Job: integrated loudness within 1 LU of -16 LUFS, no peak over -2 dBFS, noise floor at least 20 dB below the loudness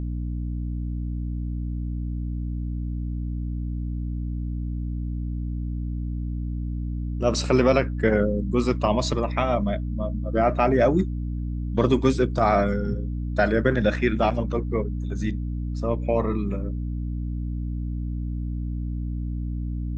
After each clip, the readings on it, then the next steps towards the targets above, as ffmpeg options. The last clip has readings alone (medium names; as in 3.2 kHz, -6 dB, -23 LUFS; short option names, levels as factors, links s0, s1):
hum 60 Hz; highest harmonic 300 Hz; hum level -26 dBFS; loudness -26.0 LUFS; peak level -6.5 dBFS; loudness target -16.0 LUFS
-> -af "bandreject=f=60:t=h:w=4,bandreject=f=120:t=h:w=4,bandreject=f=180:t=h:w=4,bandreject=f=240:t=h:w=4,bandreject=f=300:t=h:w=4"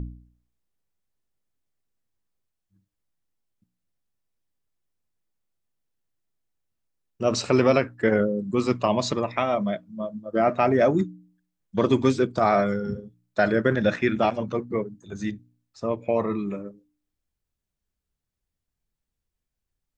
hum not found; loudness -24.5 LUFS; peak level -6.5 dBFS; loudness target -16.0 LUFS
-> -af "volume=2.66,alimiter=limit=0.794:level=0:latency=1"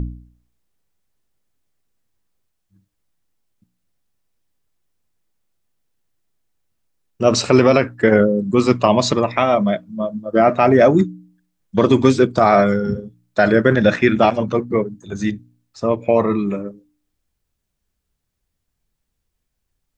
loudness -16.5 LUFS; peak level -2.0 dBFS; noise floor -76 dBFS